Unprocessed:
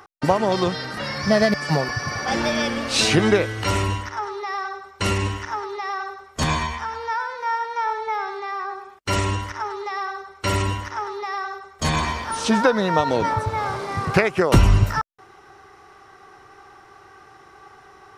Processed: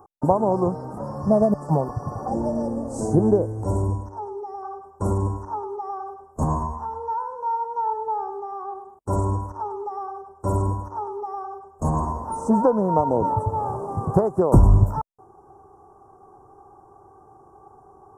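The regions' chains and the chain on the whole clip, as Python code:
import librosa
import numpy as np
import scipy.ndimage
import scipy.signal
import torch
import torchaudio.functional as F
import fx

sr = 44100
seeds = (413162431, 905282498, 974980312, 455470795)

y = fx.chain(x, sr, fx.lowpass(hz=11000.0, slope=12),
    fx.peak_eq(hz=1200.0, db=-10.0, octaves=0.79), at=(2.28, 4.63))
y = scipy.signal.sosfilt(scipy.signal.ellip(3, 1.0, 70, [970.0, 7700.0], 'bandstop', fs=sr, output='sos'), y)
y = fx.high_shelf(y, sr, hz=3600.0, db=-10.0)
y = F.gain(torch.from_numpy(y), 1.0).numpy()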